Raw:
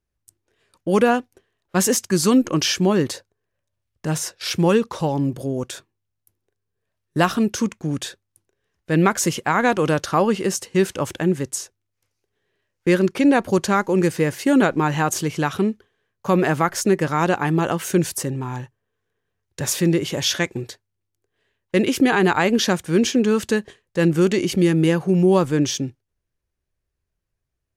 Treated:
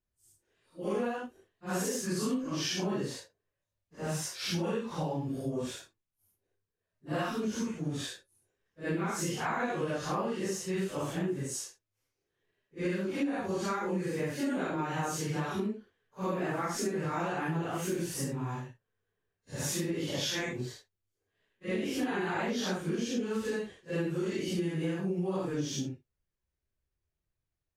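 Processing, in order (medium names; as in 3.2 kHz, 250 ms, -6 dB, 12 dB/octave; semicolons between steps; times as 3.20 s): phase randomisation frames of 200 ms; treble shelf 7.7 kHz -4 dB; compression, threshold -23 dBFS, peak gain reduction 14 dB; trim -6.5 dB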